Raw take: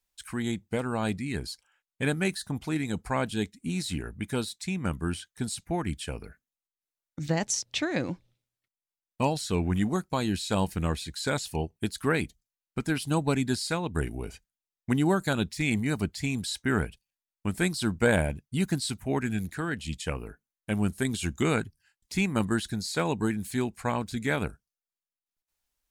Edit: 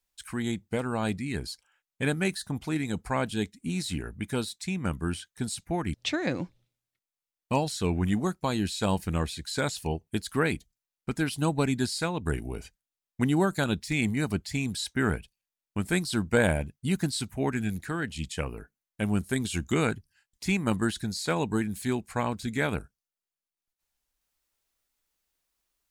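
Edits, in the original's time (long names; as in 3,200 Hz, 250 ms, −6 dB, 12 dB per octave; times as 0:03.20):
0:05.94–0:07.63: remove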